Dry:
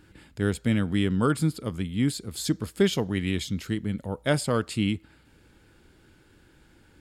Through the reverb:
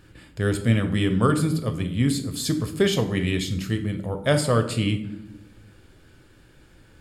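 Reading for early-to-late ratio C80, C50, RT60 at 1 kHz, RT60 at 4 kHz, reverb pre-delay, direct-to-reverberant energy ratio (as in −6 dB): 14.0 dB, 11.5 dB, 0.70 s, 0.50 s, 7 ms, 6.5 dB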